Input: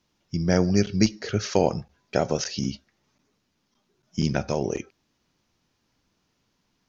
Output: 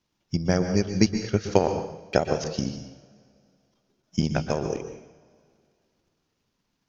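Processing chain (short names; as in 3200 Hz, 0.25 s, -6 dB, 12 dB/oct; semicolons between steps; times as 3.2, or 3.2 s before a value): transient shaper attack +9 dB, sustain -6 dB; reverb, pre-delay 0.115 s, DRR 7 dB; gain -5.5 dB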